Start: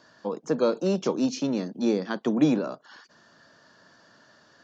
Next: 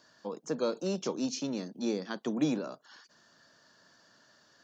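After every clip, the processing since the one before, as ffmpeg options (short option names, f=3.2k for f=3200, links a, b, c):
-af "highshelf=f=4.2k:g=10.5,volume=-8dB"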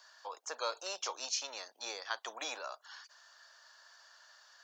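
-af "highpass=f=760:w=0.5412,highpass=f=760:w=1.3066,volume=3.5dB"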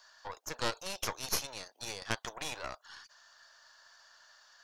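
-af "aeval=exprs='0.1*(cos(1*acos(clip(val(0)/0.1,-1,1)))-cos(1*PI/2))+0.0501*(cos(4*acos(clip(val(0)/0.1,-1,1)))-cos(4*PI/2))':c=same"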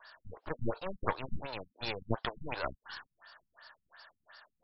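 -af "afftfilt=real='re*lt(b*sr/1024,220*pow(5600/220,0.5+0.5*sin(2*PI*2.8*pts/sr)))':imag='im*lt(b*sr/1024,220*pow(5600/220,0.5+0.5*sin(2*PI*2.8*pts/sr)))':win_size=1024:overlap=0.75,volume=6.5dB"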